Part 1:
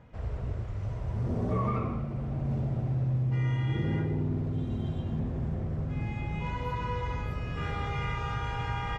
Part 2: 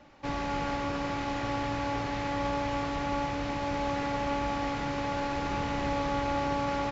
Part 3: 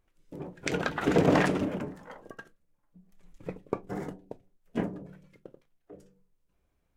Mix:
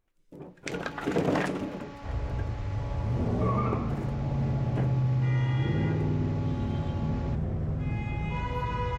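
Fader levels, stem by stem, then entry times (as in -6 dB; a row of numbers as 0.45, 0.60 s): +2.0, -13.5, -4.0 dB; 1.90, 0.45, 0.00 s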